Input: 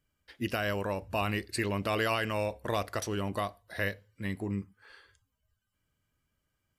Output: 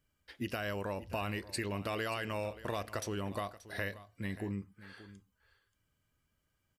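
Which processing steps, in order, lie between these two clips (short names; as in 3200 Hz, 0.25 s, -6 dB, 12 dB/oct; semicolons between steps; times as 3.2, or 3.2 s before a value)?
compressor 2.5:1, threshold -36 dBFS, peak gain reduction 8 dB; echo 0.58 s -16.5 dB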